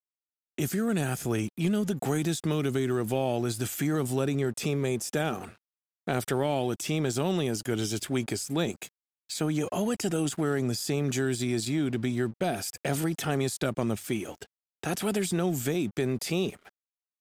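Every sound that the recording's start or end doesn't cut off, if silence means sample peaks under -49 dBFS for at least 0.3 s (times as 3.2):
0.58–5.56
6.07–8.89
9.29–14.46
14.83–16.69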